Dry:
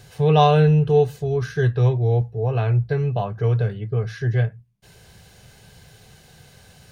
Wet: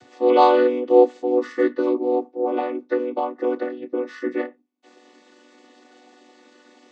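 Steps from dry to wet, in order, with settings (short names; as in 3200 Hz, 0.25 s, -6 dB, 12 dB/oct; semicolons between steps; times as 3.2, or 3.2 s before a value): chord vocoder minor triad, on B3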